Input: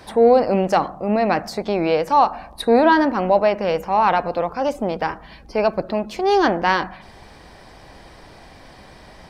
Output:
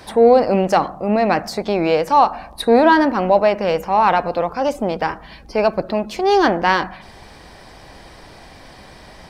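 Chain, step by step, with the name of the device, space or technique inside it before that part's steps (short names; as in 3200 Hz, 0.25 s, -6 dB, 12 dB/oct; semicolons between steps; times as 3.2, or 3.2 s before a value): exciter from parts (in parallel at -8 dB: HPF 3200 Hz 6 dB/oct + soft clip -32.5 dBFS, distortion -6 dB); on the sum: gain +2 dB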